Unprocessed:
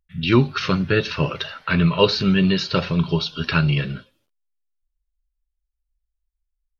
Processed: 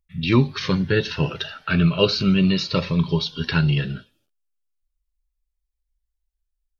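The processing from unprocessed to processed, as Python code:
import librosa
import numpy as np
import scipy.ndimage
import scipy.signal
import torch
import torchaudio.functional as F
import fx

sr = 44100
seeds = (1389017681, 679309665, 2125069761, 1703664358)

y = fx.notch_cascade(x, sr, direction='falling', hz=0.39)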